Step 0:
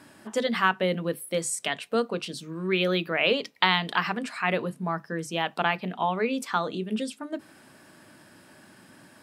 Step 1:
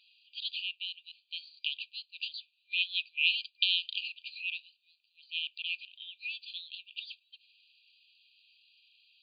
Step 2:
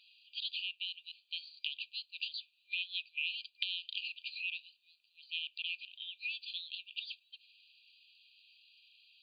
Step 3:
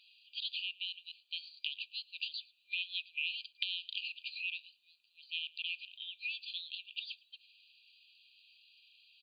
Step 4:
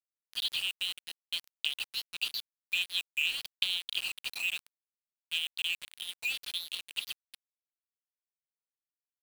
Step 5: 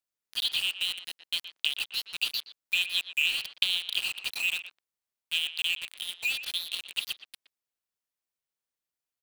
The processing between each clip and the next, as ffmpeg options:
ffmpeg -i in.wav -af "afftfilt=real='re*between(b*sr/4096,2400,4800)':imag='im*between(b*sr/4096,2400,4800)':win_size=4096:overlap=0.75" out.wav
ffmpeg -i in.wav -af "acompressor=threshold=-36dB:ratio=4,volume=1dB" out.wav
ffmpeg -i in.wav -filter_complex "[0:a]asplit=2[link_01][link_02];[link_02]adelay=110.8,volume=-23dB,highshelf=frequency=4000:gain=-2.49[link_03];[link_01][link_03]amix=inputs=2:normalize=0" out.wav
ffmpeg -i in.wav -af "aeval=exprs='val(0)*gte(abs(val(0)),0.00794)':channel_layout=same,volume=6.5dB" out.wav
ffmpeg -i in.wav -filter_complex "[0:a]asplit=2[link_01][link_02];[link_02]adelay=120,highpass=300,lowpass=3400,asoftclip=type=hard:threshold=-19dB,volume=-11dB[link_03];[link_01][link_03]amix=inputs=2:normalize=0,volume=4dB" out.wav

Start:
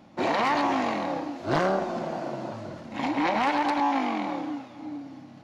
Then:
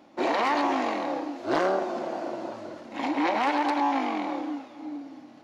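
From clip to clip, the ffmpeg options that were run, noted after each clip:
ffmpeg -i in.wav -af "lowshelf=frequency=220:width_type=q:width=1.5:gain=-10.5,volume=-1dB" out.wav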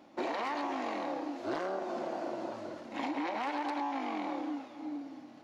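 ffmpeg -i in.wav -af "acompressor=threshold=-29dB:ratio=6,volume=-3dB" out.wav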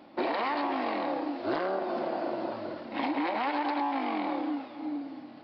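ffmpeg -i in.wav -af "aresample=11025,aresample=44100,volume=5dB" out.wav

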